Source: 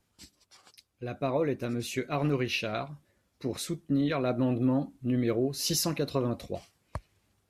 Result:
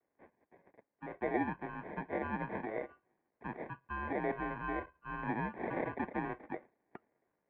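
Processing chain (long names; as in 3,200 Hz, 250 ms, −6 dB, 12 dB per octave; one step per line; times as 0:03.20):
decimation without filtering 29×
pitch vibrato 0.37 Hz 12 cents
single-sideband voice off tune −210 Hz 460–2,300 Hz
level −3 dB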